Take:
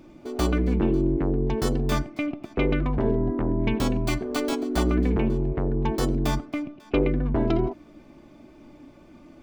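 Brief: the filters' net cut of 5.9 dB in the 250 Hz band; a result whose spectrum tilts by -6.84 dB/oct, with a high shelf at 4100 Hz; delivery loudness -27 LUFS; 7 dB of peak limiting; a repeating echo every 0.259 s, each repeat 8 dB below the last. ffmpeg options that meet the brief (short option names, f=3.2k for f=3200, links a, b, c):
-af "equalizer=f=250:t=o:g=-8,highshelf=f=4.1k:g=-8,alimiter=limit=-18.5dB:level=0:latency=1,aecho=1:1:259|518|777|1036|1295:0.398|0.159|0.0637|0.0255|0.0102,volume=2dB"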